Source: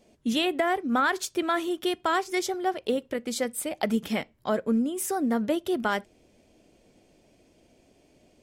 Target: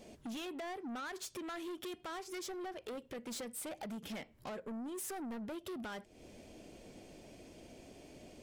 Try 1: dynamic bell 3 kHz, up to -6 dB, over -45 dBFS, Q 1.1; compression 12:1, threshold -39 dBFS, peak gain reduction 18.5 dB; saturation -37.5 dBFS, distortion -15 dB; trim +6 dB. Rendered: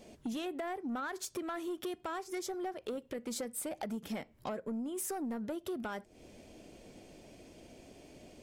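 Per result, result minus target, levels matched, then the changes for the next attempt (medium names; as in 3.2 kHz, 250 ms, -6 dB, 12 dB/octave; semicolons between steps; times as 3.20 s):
saturation: distortion -7 dB; 4 kHz band -4.0 dB
change: saturation -46 dBFS, distortion -7 dB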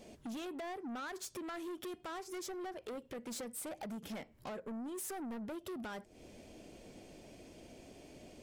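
4 kHz band -2.5 dB
remove: dynamic bell 3 kHz, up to -6 dB, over -45 dBFS, Q 1.1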